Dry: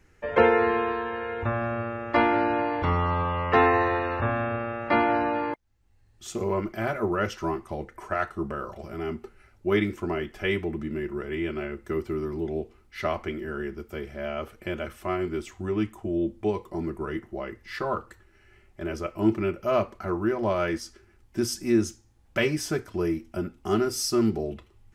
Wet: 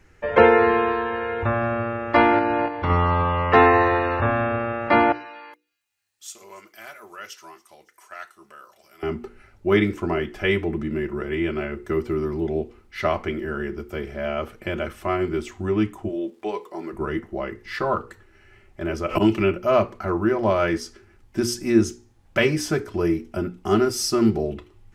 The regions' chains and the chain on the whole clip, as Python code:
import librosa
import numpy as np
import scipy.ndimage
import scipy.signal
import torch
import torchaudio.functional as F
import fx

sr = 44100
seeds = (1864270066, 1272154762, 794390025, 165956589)

y = fx.chain(x, sr, fx.lowpass(hz=6200.0, slope=12),
    fx.level_steps(step_db=9), at=(2.39, 2.9))
y = fx.chain(y, sr, fx.differentiator(),
    fx.echo_wet_highpass(ms=281, feedback_pct=56, hz=4800.0, wet_db=-21.0), at=(5.12, 9.03))
y = fx.highpass(y, sr, hz=280.0, slope=12, at=(16.08, 16.92), fade=0.02)
y = fx.low_shelf(y, sr, hz=390.0, db=-9.0, at=(16.08, 16.92), fade=0.02)
y = fx.dmg_crackle(y, sr, seeds[0], per_s=490.0, level_db=-61.0, at=(16.08, 16.92), fade=0.02)
y = fx.chain(y, sr, fx.peak_eq(hz=2800.0, db=8.5, octaves=0.39),
    fx.auto_swell(attack_ms=118.0),
    fx.band_squash(depth_pct=100), at=(19.08, 19.58))
y = fx.high_shelf(y, sr, hz=6200.0, db=-4.5)
y = fx.hum_notches(y, sr, base_hz=60, count=8)
y = F.gain(torch.from_numpy(y), 5.5).numpy()